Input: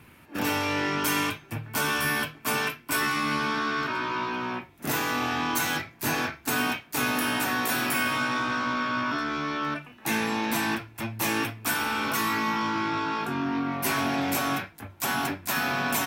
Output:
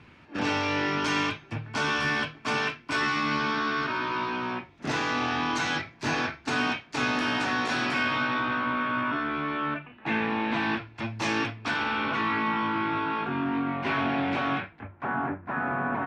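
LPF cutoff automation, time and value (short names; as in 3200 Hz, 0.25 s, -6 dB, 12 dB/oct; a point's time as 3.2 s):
LPF 24 dB/oct
7.82 s 5600 Hz
8.7 s 3100 Hz
10.38 s 3100 Hz
11.25 s 5800 Hz
12.21 s 3300 Hz
14.69 s 3300 Hz
15.1 s 1600 Hz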